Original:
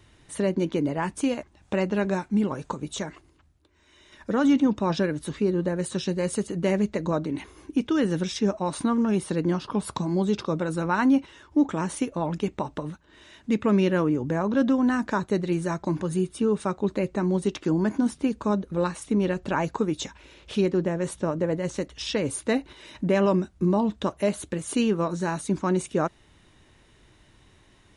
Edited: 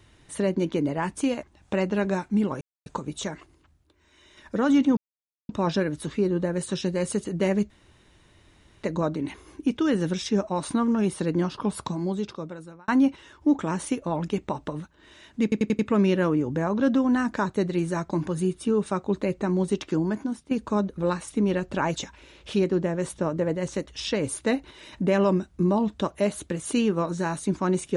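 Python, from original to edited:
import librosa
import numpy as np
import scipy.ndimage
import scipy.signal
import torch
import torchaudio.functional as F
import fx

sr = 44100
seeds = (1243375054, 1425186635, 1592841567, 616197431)

y = fx.edit(x, sr, fx.insert_silence(at_s=2.61, length_s=0.25),
    fx.insert_silence(at_s=4.72, length_s=0.52),
    fx.insert_room_tone(at_s=6.93, length_s=1.13),
    fx.fade_out_span(start_s=9.78, length_s=1.2),
    fx.stutter(start_s=13.53, slice_s=0.09, count=5),
    fx.fade_out_to(start_s=17.63, length_s=0.62, floor_db=-13.5),
    fx.cut(start_s=19.7, length_s=0.28), tone=tone)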